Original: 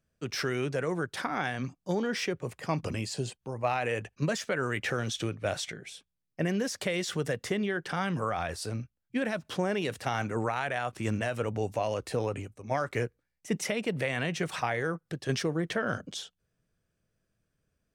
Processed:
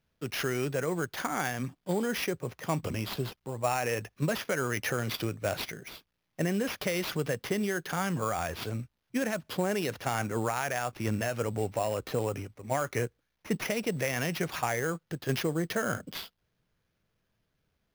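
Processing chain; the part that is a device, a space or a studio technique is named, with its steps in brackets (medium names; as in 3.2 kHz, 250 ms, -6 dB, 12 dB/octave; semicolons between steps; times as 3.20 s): early companding sampler (sample-rate reducer 8.1 kHz, jitter 0%; companded quantiser 8-bit)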